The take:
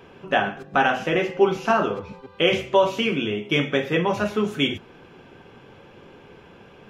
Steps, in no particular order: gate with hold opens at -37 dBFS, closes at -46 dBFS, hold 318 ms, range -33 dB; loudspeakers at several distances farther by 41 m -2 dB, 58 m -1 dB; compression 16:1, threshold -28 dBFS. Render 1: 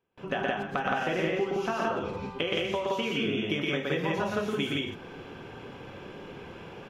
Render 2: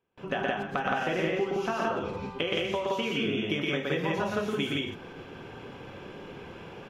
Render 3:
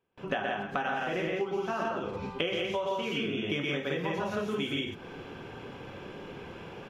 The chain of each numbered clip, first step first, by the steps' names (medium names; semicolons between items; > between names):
gate with hold > compression > loudspeakers at several distances; compression > gate with hold > loudspeakers at several distances; gate with hold > loudspeakers at several distances > compression